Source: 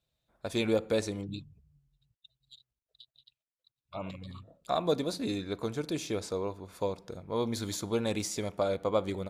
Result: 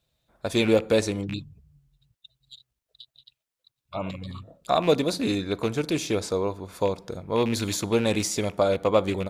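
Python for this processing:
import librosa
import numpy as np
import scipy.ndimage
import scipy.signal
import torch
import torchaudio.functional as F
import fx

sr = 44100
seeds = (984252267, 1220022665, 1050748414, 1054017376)

y = fx.rattle_buzz(x, sr, strikes_db=-38.0, level_db=-33.0)
y = y * 10.0 ** (7.5 / 20.0)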